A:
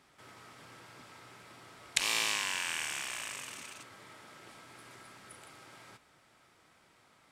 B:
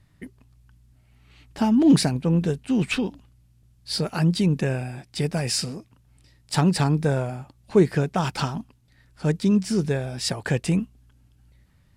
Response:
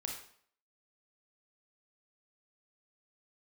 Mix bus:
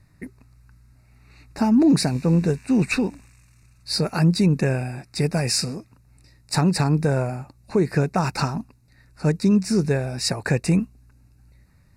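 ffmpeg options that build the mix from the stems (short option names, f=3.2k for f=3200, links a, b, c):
-filter_complex "[0:a]highpass=f=1.3k:p=1,volume=-16.5dB[a];[1:a]volume=3dB[b];[a][b]amix=inputs=2:normalize=0,asuperstop=centerf=3200:order=8:qfactor=3.2,alimiter=limit=-10dB:level=0:latency=1:release=158"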